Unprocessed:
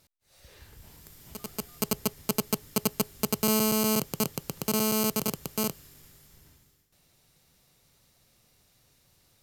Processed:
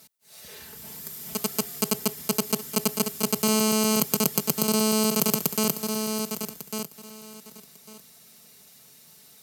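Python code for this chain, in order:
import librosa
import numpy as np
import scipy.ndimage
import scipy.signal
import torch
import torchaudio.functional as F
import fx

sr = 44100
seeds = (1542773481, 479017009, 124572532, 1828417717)

p1 = x + 0.8 * np.pad(x, (int(4.6 * sr / 1000.0), 0))[:len(x)]
p2 = fx.echo_feedback(p1, sr, ms=1149, feedback_pct=17, wet_db=-14.5)
p3 = fx.over_compress(p2, sr, threshold_db=-30.0, ratio=-1.0)
p4 = p2 + F.gain(torch.from_numpy(p3), 2.0).numpy()
p5 = scipy.signal.sosfilt(scipy.signal.butter(4, 100.0, 'highpass', fs=sr, output='sos'), p4)
p6 = fx.high_shelf(p5, sr, hz=6000.0, db=8.0)
y = F.gain(torch.from_numpy(p6), -4.5).numpy()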